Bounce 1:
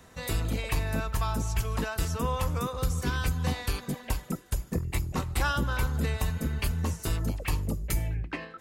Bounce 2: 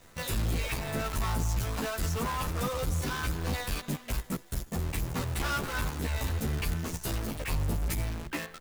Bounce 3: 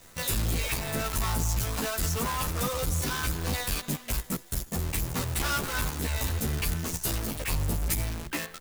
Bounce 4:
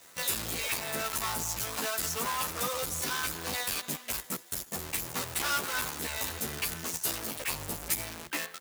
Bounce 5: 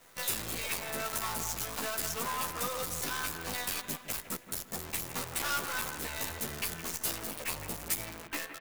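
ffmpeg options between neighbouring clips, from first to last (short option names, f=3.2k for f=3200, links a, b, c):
-filter_complex "[0:a]volume=28.5dB,asoftclip=hard,volume=-28.5dB,acrusher=bits=7:dc=4:mix=0:aa=0.000001,asplit=2[a][b];[b]adelay=11.7,afreqshift=1.1[c];[a][c]amix=inputs=2:normalize=1,volume=4.5dB"
-af "highshelf=f=4.3k:g=8,volume=1dB"
-af "highpass=f=530:p=1"
-filter_complex "[0:a]acrossover=split=3100[a][b];[a]aecho=1:1:165|330|495|660:0.316|0.104|0.0344|0.0114[c];[b]acrusher=bits=6:dc=4:mix=0:aa=0.000001[d];[c][d]amix=inputs=2:normalize=0,volume=-2.5dB"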